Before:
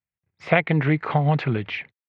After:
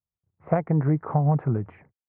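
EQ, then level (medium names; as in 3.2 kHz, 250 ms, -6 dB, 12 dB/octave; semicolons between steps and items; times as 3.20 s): low-pass 1.2 kHz 24 dB/octave; bass shelf 120 Hz +9 dB; -4.0 dB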